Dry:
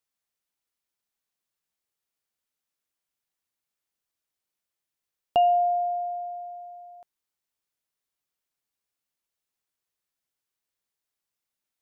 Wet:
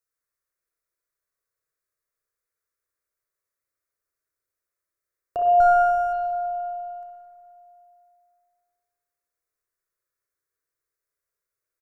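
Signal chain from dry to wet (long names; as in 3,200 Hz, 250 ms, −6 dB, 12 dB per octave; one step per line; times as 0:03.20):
0:05.60–0:06.13: lower of the sound and its delayed copy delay 0.44 ms
phaser with its sweep stopped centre 820 Hz, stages 6
on a send: repeating echo 153 ms, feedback 58%, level −17 dB
on the sum: spring reverb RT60 2.3 s, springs 31/53/58 ms, chirp 35 ms, DRR −3 dB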